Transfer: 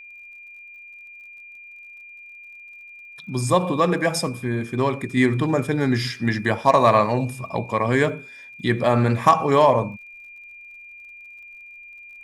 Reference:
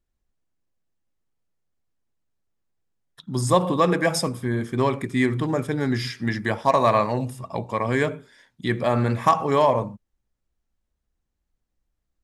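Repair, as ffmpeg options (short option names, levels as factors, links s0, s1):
-af "adeclick=t=4,bandreject=f=2400:w=30,asetnsamples=n=441:p=0,asendcmd='5.17 volume volume -3dB',volume=1"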